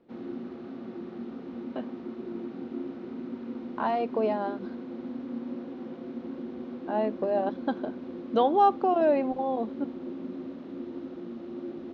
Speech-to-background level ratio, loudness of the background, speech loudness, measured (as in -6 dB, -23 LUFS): 11.0 dB, -38.5 LUFS, -27.5 LUFS